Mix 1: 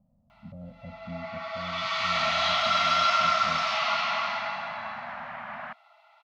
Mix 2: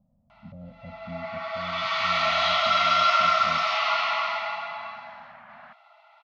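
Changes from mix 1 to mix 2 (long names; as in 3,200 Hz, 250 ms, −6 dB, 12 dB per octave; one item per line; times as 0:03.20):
first sound +3.5 dB
second sound −9.0 dB
master: add high-frequency loss of the air 86 metres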